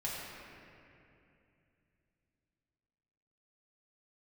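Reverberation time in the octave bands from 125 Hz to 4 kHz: 4.0 s, 3.6 s, 2.9 s, 2.5 s, 2.7 s, 1.8 s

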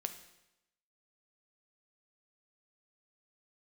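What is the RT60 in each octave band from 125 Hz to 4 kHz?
0.85 s, 0.90 s, 0.90 s, 0.90 s, 0.90 s, 0.85 s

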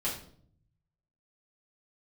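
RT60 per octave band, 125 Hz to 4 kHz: 1.4 s, 0.90 s, 0.65 s, 0.50 s, 0.40 s, 0.45 s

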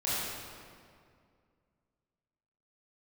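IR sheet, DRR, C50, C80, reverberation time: -10.5 dB, -4.5 dB, -1.5 dB, 2.2 s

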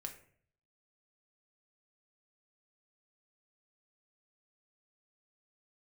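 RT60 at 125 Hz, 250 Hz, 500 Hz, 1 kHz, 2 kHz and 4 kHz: 0.90 s, 0.65 s, 0.60 s, 0.50 s, 0.50 s, 0.35 s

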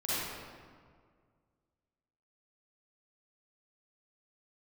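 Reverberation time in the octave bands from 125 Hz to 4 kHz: 2.3 s, 2.1 s, 2.0 s, 1.8 s, 1.5 s, 1.1 s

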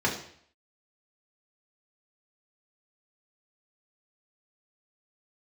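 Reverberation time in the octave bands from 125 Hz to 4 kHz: 0.65 s, 0.60 s, 0.60 s, 0.60 s, 0.60 s, 0.60 s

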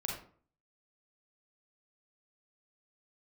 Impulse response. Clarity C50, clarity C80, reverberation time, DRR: 3.0 dB, 8.0 dB, 0.50 s, -1.5 dB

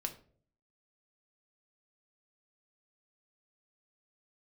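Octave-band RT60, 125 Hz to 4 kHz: 0.80 s, 0.65 s, 0.60 s, 0.40 s, 0.35 s, 0.30 s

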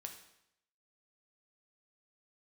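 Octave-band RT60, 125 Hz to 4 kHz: 0.80 s, 0.80 s, 0.75 s, 0.75 s, 0.75 s, 0.75 s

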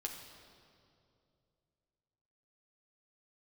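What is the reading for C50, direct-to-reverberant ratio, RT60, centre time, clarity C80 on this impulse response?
5.0 dB, 0.0 dB, 2.5 s, 50 ms, 6.5 dB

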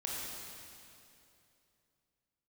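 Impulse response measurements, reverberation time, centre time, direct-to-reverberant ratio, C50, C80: 2.8 s, 158 ms, -5.0 dB, -2.5 dB, -1.0 dB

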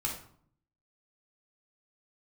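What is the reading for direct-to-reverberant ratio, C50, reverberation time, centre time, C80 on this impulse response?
-2.5 dB, 5.5 dB, 0.60 s, 28 ms, 10.0 dB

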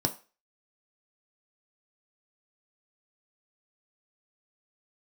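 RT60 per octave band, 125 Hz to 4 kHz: 0.25 s, 0.25 s, 0.35 s, 0.35 s, 0.35 s, 0.35 s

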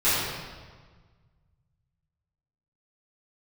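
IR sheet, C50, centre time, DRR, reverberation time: -2.5 dB, 110 ms, -15.0 dB, 1.5 s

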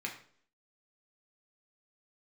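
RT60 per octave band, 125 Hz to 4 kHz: 0.55 s, 0.60 s, 0.60 s, 0.50 s, 0.45 s, 0.45 s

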